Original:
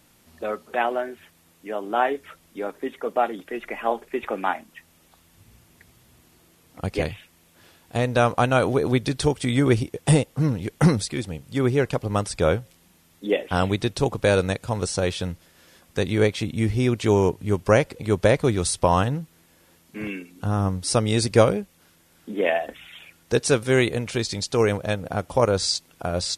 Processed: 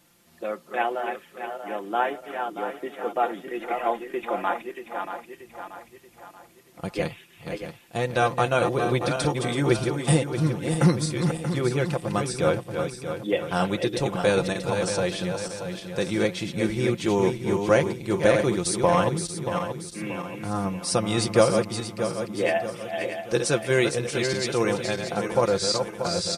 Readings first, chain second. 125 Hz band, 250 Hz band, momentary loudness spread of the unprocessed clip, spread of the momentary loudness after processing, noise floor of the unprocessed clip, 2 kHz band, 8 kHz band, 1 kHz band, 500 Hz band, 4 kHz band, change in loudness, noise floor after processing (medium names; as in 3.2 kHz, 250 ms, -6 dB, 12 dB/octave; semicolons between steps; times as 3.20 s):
-3.5 dB, -1.5 dB, 13 LU, 12 LU, -59 dBFS, -0.5 dB, -0.5 dB, -0.5 dB, -1.0 dB, -1.0 dB, -2.0 dB, -54 dBFS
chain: backward echo that repeats 316 ms, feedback 66%, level -6 dB; bass shelf 73 Hz -10 dB; comb 5.8 ms, depth 58%; trim -3.5 dB